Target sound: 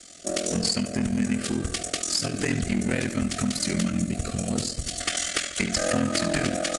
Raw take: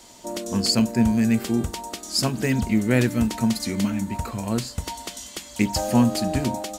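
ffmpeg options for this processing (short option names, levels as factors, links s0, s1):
-filter_complex "[0:a]aemphasis=mode=production:type=cd,acompressor=threshold=0.0631:ratio=10,asuperstop=centerf=930:order=20:qfactor=2.4,agate=range=0.447:threshold=0.0158:ratio=16:detection=peak,asetnsamples=n=441:p=0,asendcmd='3.9 equalizer g -3;5 equalizer g 14',equalizer=f=1600:t=o:w=1.7:g=4,asoftclip=type=tanh:threshold=0.0794,aeval=exprs='val(0)*sin(2*PI*21*n/s)':c=same,asplit=2[s0][s1];[s1]adelay=72,lowpass=f=4000:p=1,volume=0.335,asplit=2[s2][s3];[s3]adelay=72,lowpass=f=4000:p=1,volume=0.53,asplit=2[s4][s5];[s5]adelay=72,lowpass=f=4000:p=1,volume=0.53,asplit=2[s6][s7];[s7]adelay=72,lowpass=f=4000:p=1,volume=0.53,asplit=2[s8][s9];[s9]adelay=72,lowpass=f=4000:p=1,volume=0.53,asplit=2[s10][s11];[s11]adelay=72,lowpass=f=4000:p=1,volume=0.53[s12];[s0][s2][s4][s6][s8][s10][s12]amix=inputs=7:normalize=0,aresample=22050,aresample=44100,volume=2.11" -ar 48000 -c:a aac -b:a 64k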